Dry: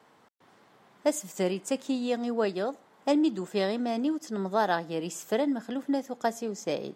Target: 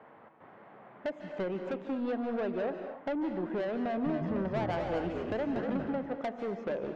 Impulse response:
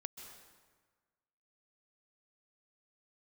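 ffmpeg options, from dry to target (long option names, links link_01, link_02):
-filter_complex "[0:a]lowpass=frequency=2300:width=0.5412,lowpass=frequency=2300:width=1.3066,equalizer=frequency=600:width_type=o:width=0.55:gain=5.5,acompressor=threshold=-31dB:ratio=4,asoftclip=type=tanh:threshold=-33.5dB,asettb=1/sr,asplit=3[link_01][link_02][link_03];[link_01]atrim=end=3.824[link_04];[link_02]atrim=start=3.82:end=5.93,asetpts=PTS-STARTPTS,afade=type=in:duration=0.004:curve=qsin,afade=type=out:start_time=2.106:duration=0.004:curve=qsin,asplit=5[link_05][link_06][link_07][link_08][link_09];[link_06]adelay=239,afreqshift=-76,volume=-4dB[link_10];[link_07]adelay=478,afreqshift=-152,volume=-13.6dB[link_11];[link_08]adelay=717,afreqshift=-228,volume=-23.3dB[link_12];[link_09]adelay=956,afreqshift=-304,volume=-32.9dB[link_13];[link_05][link_10][link_11][link_12][link_13]amix=inputs=5:normalize=0,atrim=end_sample=93051[link_14];[link_03]atrim=start=5.926[link_15];[link_04][link_14]acrossfade=duration=0.004:curve1=hsin:curve2=qsin[link_16];[link_16][link_15]acrossfade=duration=0.004:curve1=qsin:curve2=hsin[link_17];[1:a]atrim=start_sample=2205,afade=type=out:start_time=0.32:duration=0.01,atrim=end_sample=14553,asetrate=39690,aresample=44100[link_18];[link_17][link_18]afir=irnorm=-1:irlink=0,volume=8dB"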